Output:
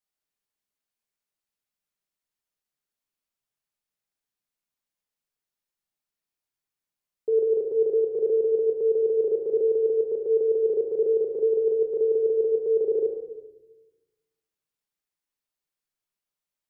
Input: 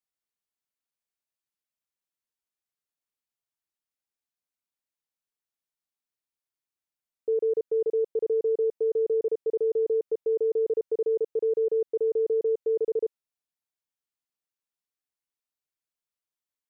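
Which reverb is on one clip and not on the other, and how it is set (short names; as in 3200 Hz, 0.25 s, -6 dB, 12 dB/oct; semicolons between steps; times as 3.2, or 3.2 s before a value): shoebox room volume 570 m³, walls mixed, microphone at 1.3 m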